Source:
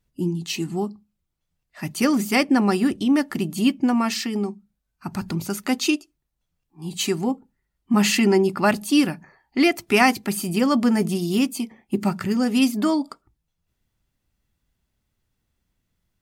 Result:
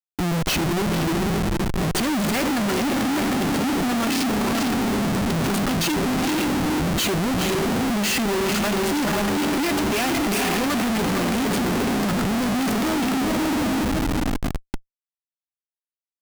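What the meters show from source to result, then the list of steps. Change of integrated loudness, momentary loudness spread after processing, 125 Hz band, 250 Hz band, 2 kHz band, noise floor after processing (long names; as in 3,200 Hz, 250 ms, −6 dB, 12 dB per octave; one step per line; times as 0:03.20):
−0.5 dB, 2 LU, +4.5 dB, 0.0 dB, +1.5 dB, below −85 dBFS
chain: feedback delay with all-pass diffusion 475 ms, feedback 52%, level −5 dB
comparator with hysteresis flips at −31.5 dBFS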